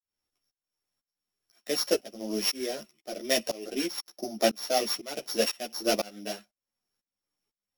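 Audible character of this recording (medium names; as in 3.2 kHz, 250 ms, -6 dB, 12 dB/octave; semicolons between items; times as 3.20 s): a buzz of ramps at a fixed pitch in blocks of 8 samples; tremolo saw up 2 Hz, depth 100%; a shimmering, thickened sound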